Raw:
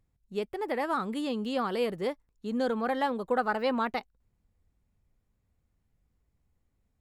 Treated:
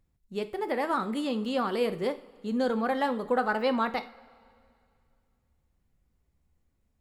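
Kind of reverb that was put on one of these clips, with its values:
coupled-rooms reverb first 0.42 s, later 2.4 s, from −18 dB, DRR 9.5 dB
level +1 dB

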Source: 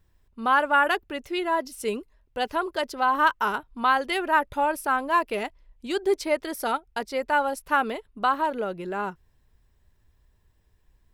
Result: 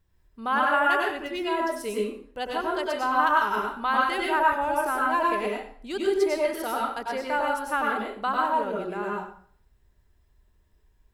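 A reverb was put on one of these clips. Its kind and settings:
dense smooth reverb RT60 0.55 s, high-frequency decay 0.8×, pre-delay 85 ms, DRR −2.5 dB
level −5 dB

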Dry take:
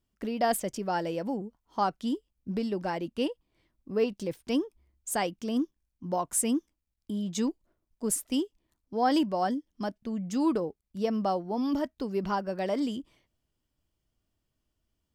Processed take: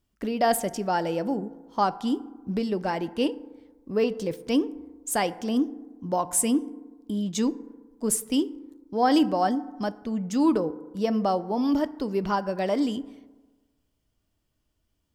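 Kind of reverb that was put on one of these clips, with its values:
feedback delay network reverb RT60 1.3 s, low-frequency decay 0.95×, high-frequency decay 0.35×, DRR 14.5 dB
level +4 dB

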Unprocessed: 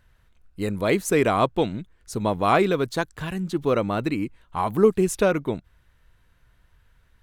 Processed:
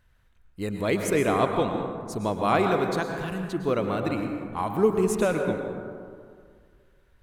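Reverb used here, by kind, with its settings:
dense smooth reverb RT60 2.1 s, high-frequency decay 0.35×, pre-delay 95 ms, DRR 4 dB
level −4 dB

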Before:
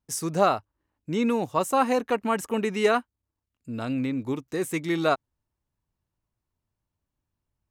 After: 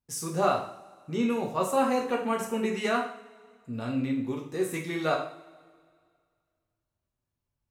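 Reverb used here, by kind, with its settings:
coupled-rooms reverb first 0.52 s, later 2.1 s, from −21 dB, DRR −1 dB
level −6.5 dB

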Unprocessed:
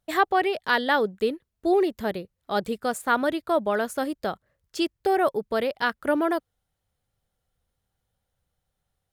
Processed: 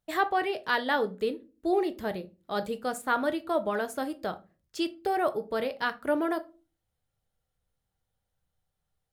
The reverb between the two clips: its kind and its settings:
rectangular room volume 140 cubic metres, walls furnished, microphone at 0.5 metres
level −5 dB

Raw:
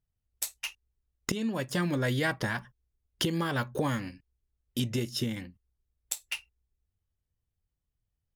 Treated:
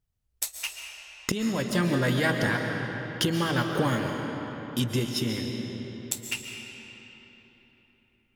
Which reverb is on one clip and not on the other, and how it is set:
comb and all-pass reverb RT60 4 s, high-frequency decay 0.7×, pre-delay 95 ms, DRR 2.5 dB
level +3 dB

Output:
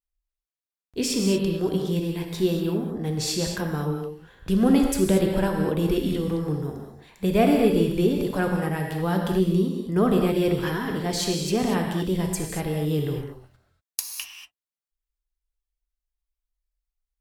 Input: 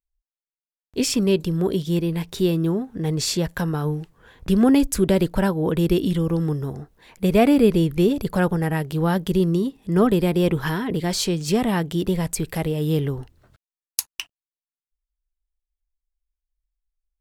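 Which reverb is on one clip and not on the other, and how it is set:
reverb whose tail is shaped and stops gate 260 ms flat, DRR 1.5 dB
level −4.5 dB

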